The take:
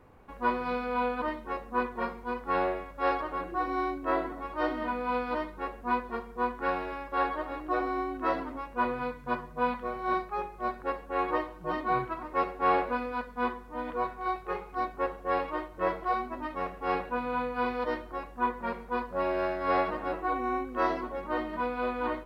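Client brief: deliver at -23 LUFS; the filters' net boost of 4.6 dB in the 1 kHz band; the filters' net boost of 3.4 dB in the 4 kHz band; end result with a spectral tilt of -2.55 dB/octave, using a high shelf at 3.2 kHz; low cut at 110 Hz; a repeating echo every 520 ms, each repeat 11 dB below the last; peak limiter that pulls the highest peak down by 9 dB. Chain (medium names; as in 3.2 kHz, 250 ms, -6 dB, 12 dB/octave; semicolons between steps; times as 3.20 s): high-pass 110 Hz; peaking EQ 1 kHz +5.5 dB; treble shelf 3.2 kHz -3.5 dB; peaking EQ 4 kHz +6.5 dB; peak limiter -20.5 dBFS; feedback delay 520 ms, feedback 28%, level -11 dB; trim +7.5 dB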